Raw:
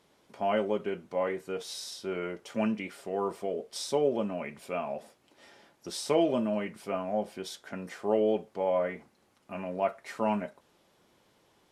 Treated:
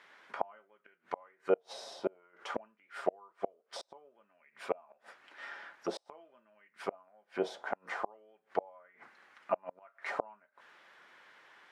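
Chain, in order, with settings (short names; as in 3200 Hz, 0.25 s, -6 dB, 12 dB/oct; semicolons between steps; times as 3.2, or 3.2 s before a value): flipped gate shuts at -26 dBFS, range -36 dB; auto-wah 650–1800 Hz, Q 2.6, down, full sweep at -38.5 dBFS; gain +17 dB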